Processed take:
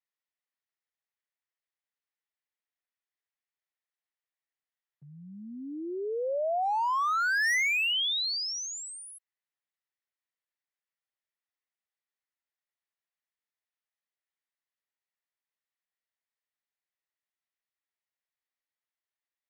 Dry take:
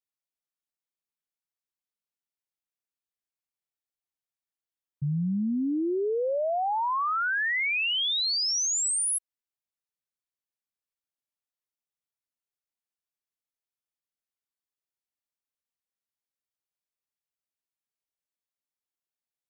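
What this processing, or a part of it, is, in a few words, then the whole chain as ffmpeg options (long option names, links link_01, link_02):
megaphone: -af "highpass=540,lowpass=3900,equalizer=frequency=1900:width_type=o:width=0.29:gain=8.5,asoftclip=type=hard:threshold=-25dB"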